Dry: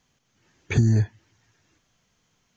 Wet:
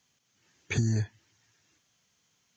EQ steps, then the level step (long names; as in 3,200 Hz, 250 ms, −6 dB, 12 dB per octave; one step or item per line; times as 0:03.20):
high-pass filter 75 Hz
high-shelf EQ 2,100 Hz +9 dB
−7.5 dB